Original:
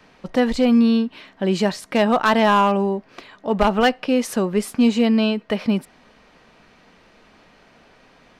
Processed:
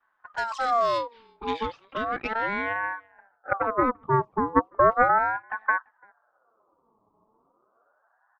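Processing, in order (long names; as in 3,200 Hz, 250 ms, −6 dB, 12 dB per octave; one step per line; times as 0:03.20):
low-pass that shuts in the quiet parts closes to 610 Hz, open at −13.5 dBFS
parametric band 970 Hz −10.5 dB 1.6 octaves
gain into a clipping stage and back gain 13 dB
flanger swept by the level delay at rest 9.7 ms, full sweep at −18 dBFS
low-pass filter sweep 6,500 Hz → 460 Hz, 0:00.71–0:03.33
harmonic generator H 3 −13 dB, 4 −34 dB, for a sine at −7 dBFS
far-end echo of a speakerphone 340 ms, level −27 dB
ring modulator whose carrier an LFO sweeps 970 Hz, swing 35%, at 0.35 Hz
level +2.5 dB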